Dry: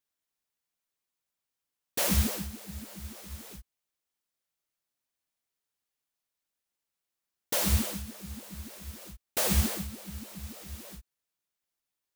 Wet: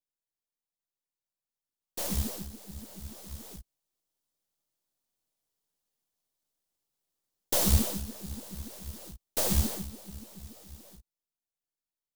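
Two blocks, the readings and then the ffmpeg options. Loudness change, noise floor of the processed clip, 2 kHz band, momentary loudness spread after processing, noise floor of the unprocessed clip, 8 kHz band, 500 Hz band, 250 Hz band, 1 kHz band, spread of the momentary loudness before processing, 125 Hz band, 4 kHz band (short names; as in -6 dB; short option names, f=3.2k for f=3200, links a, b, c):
0.0 dB, under -85 dBFS, -6.5 dB, 21 LU, under -85 dBFS, -0.5 dB, -0.5 dB, -1.0 dB, -2.0 dB, 18 LU, -0.5 dB, -2.0 dB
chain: -filter_complex "[0:a]aeval=exprs='if(lt(val(0),0),0.447*val(0),val(0))':c=same,acrossover=split=320|1400|2600[a][b][c][d];[c]acrusher=samples=31:mix=1:aa=0.000001[e];[a][b][e][d]amix=inputs=4:normalize=0,dynaudnorm=f=530:g=11:m=13.5dB,volume=-7dB"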